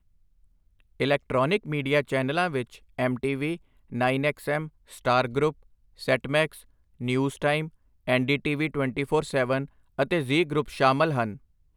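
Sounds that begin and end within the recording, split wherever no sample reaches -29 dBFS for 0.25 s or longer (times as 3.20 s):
1.00–2.62 s
2.99–3.55 s
3.93–4.65 s
5.05–5.50 s
6.03–6.46 s
7.01–7.66 s
8.08–9.64 s
9.99–11.33 s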